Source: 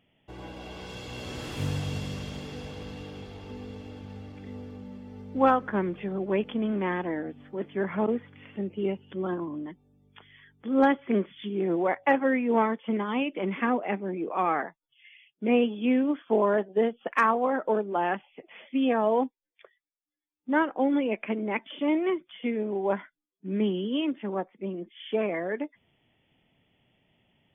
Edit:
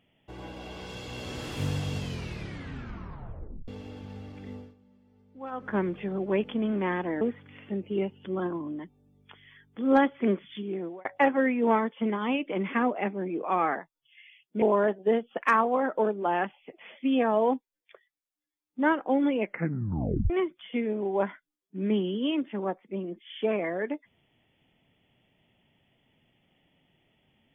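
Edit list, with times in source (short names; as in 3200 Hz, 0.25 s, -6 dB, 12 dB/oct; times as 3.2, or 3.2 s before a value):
1.97 tape stop 1.71 s
4.52–5.74 dip -18.5 dB, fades 0.23 s
7.21–8.08 cut
11.37–11.92 fade out
15.49–16.32 cut
21.12 tape stop 0.88 s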